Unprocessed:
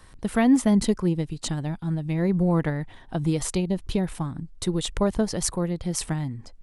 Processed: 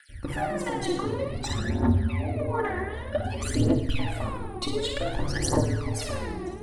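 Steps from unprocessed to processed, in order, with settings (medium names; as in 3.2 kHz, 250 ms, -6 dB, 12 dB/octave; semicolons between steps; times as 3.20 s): random holes in the spectrogram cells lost 21%; tone controls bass -11 dB, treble -12 dB; peak limiter -23.5 dBFS, peak gain reduction 11 dB; compression, threshold -33 dBFS, peak gain reduction 7 dB; whistle 9.6 kHz -67 dBFS; ring modulator 72 Hz; flutter echo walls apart 9.3 m, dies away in 0.52 s; simulated room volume 2400 m³, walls mixed, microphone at 2.4 m; phaser 0.54 Hz, delay 2.8 ms, feedback 73%; trim +5 dB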